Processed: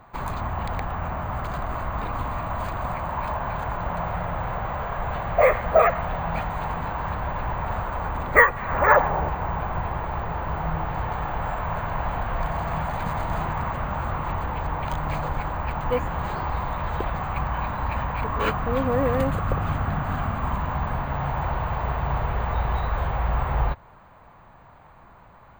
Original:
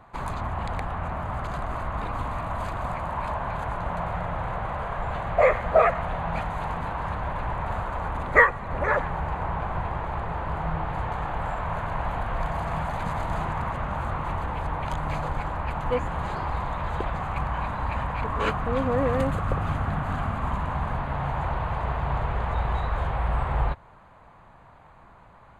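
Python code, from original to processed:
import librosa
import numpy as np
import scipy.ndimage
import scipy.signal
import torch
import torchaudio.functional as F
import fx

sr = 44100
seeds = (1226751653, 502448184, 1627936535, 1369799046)

y = fx.peak_eq(x, sr, hz=fx.line((8.56, 2300.0), (9.28, 380.0)), db=8.5, octaves=1.8, at=(8.56, 9.28), fade=0.02)
y = np.repeat(y[::2], 2)[:len(y)]
y = F.gain(torch.from_numpy(y), 1.5).numpy()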